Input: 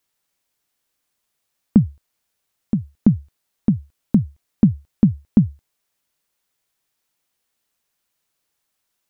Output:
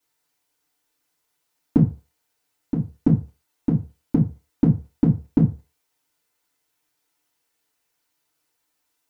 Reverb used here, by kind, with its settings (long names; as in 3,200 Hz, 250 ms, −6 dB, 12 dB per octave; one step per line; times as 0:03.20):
feedback delay network reverb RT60 0.32 s, low-frequency decay 0.7×, high-frequency decay 0.7×, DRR −8.5 dB
level −7 dB